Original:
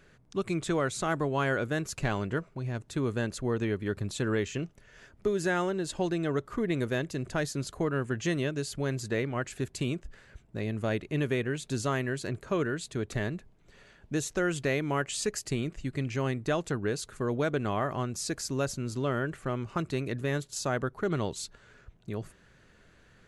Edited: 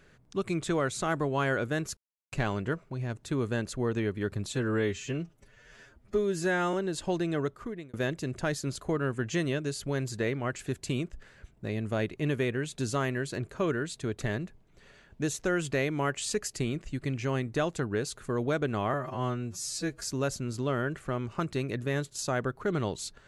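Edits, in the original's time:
1.97 insert silence 0.35 s
4.18–5.65 stretch 1.5×
6.3–6.85 fade out
17.85–18.39 stretch 2×

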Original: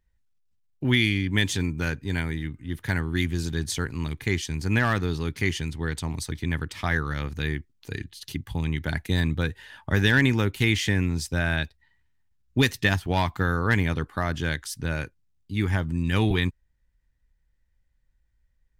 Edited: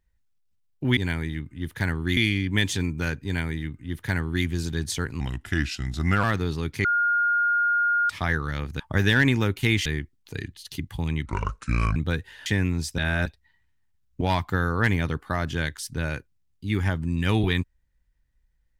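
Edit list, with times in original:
2.05–3.25 copy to 0.97
4–4.86 speed 83%
5.47–6.72 bleep 1420 Hz -19 dBFS
8.82–9.27 speed 64%
9.77–10.83 move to 7.42
11.35–11.63 reverse
12.58–13.08 cut

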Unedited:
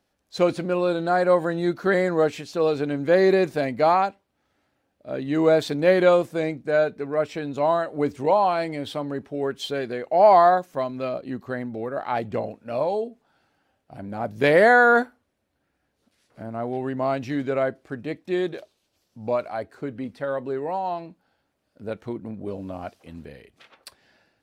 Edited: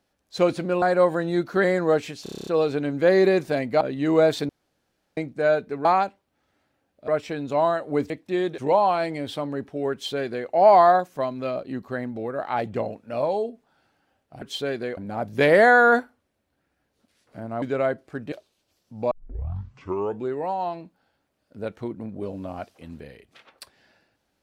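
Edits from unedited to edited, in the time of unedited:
0.82–1.12 cut
2.53 stutter 0.03 s, 9 plays
3.87–5.1 move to 7.14
5.78–6.46 room tone
9.51–10.06 copy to 14
16.65–17.39 cut
18.09–18.57 move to 8.16
19.36 tape start 1.22 s

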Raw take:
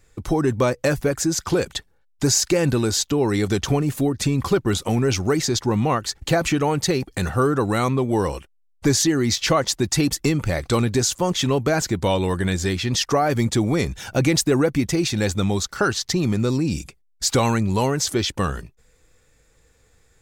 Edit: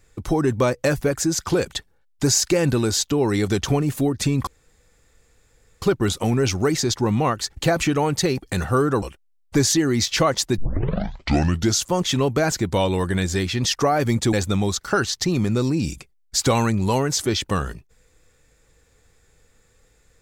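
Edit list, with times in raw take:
4.47 insert room tone 1.35 s
7.67–8.32 cut
9.88 tape start 1.25 s
13.63–15.21 cut

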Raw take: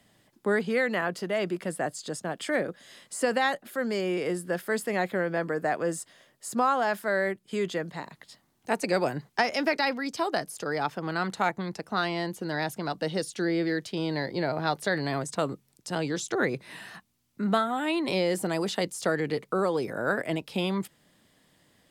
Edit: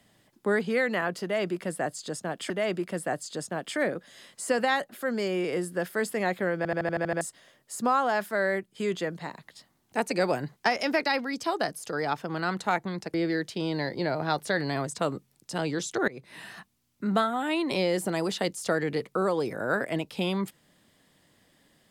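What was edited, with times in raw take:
1.23–2.5 loop, 2 plays
5.3 stutter in place 0.08 s, 8 plays
11.87–13.51 cut
16.45–16.81 fade in, from -21.5 dB

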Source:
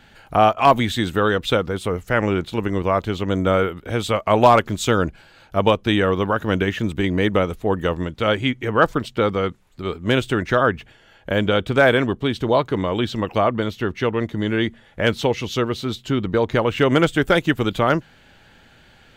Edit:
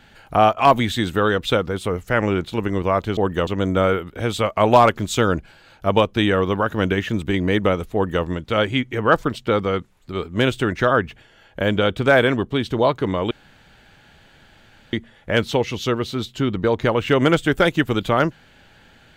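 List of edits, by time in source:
7.64–7.94 copy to 3.17
13.01–14.63 room tone

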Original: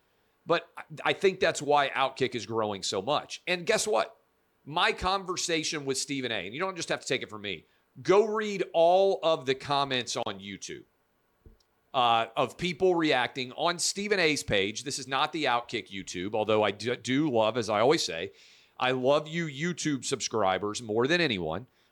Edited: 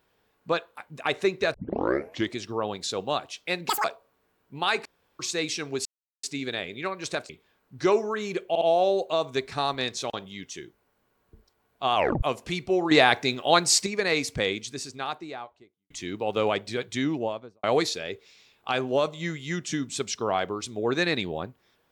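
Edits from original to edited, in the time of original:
1.54 tape start 0.80 s
3.69–3.99 speed 196%
5–5.34 room tone
6 insert silence 0.38 s
7.06–7.54 cut
8.74 stutter 0.06 s, 3 plays
12.08 tape stop 0.27 s
13.04–13.99 gain +7.5 dB
14.68–16.03 studio fade out
17.14–17.76 studio fade out

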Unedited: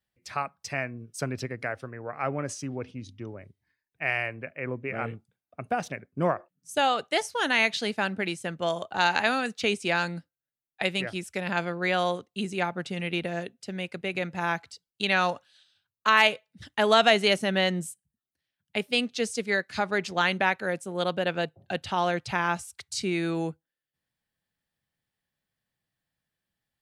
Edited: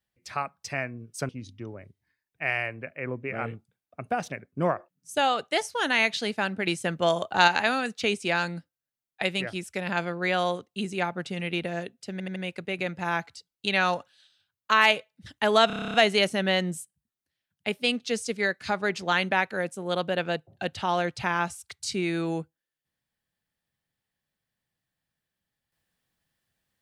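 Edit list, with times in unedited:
1.29–2.89 cut
8.27–9.08 gain +4.5 dB
13.72 stutter 0.08 s, 4 plays
17.03 stutter 0.03 s, 10 plays

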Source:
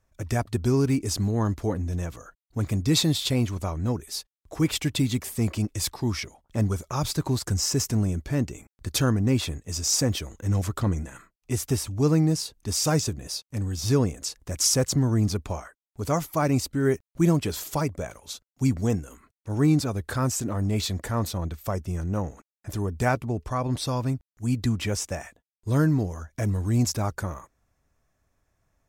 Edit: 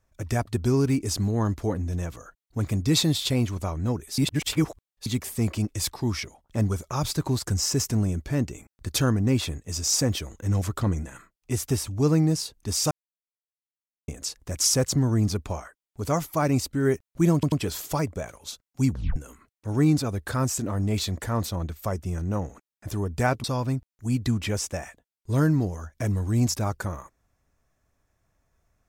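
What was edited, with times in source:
4.18–5.06 reverse
12.91–14.08 mute
17.34 stutter 0.09 s, 3 plays
18.73 tape stop 0.25 s
23.26–23.82 cut

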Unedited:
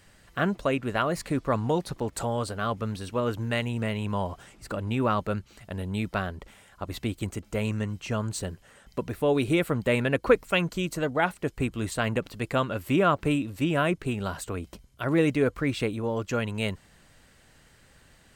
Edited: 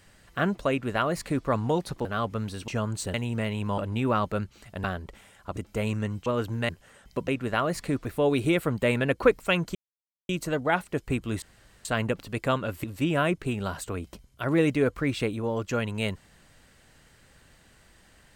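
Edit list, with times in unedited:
0.7–1.47 copy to 9.09
2.05–2.52 cut
3.15–3.58 swap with 8.04–8.5
4.22–4.73 cut
5.79–6.17 cut
6.9–7.35 cut
10.79 insert silence 0.54 s
11.92 insert room tone 0.43 s
12.91–13.44 cut

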